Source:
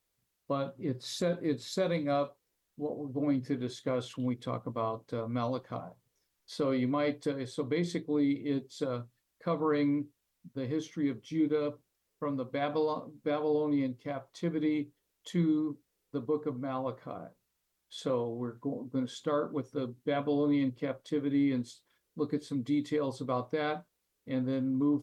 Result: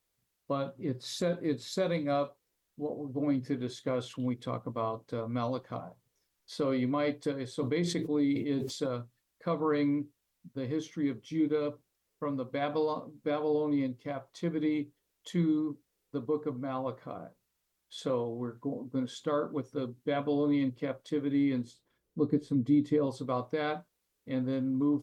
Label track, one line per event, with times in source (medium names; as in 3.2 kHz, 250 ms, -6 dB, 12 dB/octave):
7.520000	8.890000	decay stretcher at most 65 dB/s
21.640000	23.070000	tilt shelf lows +6.5 dB, about 720 Hz